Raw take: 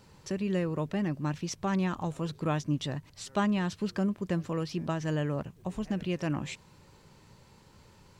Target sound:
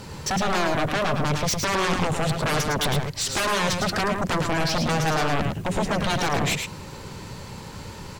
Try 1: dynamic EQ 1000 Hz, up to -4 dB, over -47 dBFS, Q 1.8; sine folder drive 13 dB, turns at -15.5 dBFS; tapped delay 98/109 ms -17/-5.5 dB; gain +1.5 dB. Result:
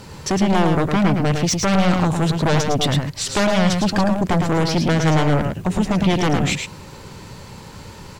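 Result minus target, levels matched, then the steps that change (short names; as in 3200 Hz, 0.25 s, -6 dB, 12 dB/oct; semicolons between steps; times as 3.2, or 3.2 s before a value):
sine folder: distortion -14 dB
change: sine folder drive 13 dB, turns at -22 dBFS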